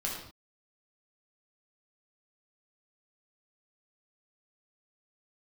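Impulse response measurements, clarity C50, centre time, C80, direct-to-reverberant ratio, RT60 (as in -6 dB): 2.5 dB, 45 ms, 5.5 dB, -3.5 dB, not exponential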